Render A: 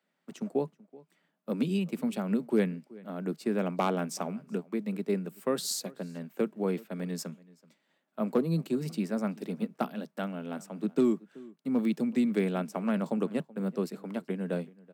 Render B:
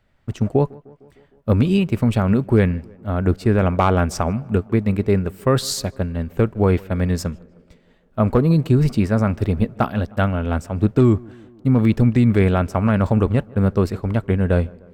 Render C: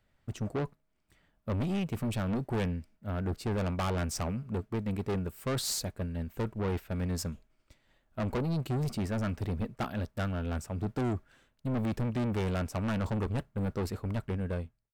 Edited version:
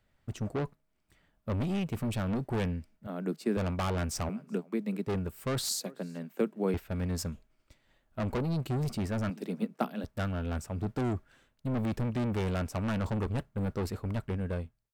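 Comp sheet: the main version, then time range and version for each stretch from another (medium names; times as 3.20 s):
C
3.07–3.57 s: from A
4.29–5.07 s: from A
5.69–6.74 s: from A
9.30–10.04 s: from A
not used: B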